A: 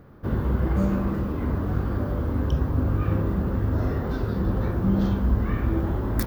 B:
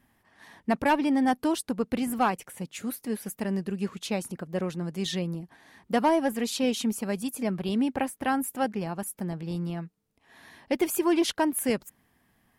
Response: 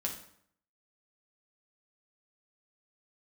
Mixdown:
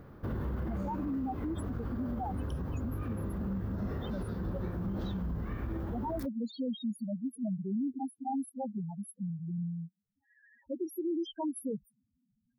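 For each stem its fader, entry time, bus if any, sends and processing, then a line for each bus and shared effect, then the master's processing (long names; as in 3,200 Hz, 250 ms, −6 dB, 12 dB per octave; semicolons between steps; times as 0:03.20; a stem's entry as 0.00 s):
−1.5 dB, 0.00 s, no send, automatic ducking −8 dB, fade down 1.25 s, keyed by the second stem
−2.0 dB, 0.00 s, no send, spectral peaks only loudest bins 2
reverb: not used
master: brickwall limiter −28 dBFS, peak gain reduction 11 dB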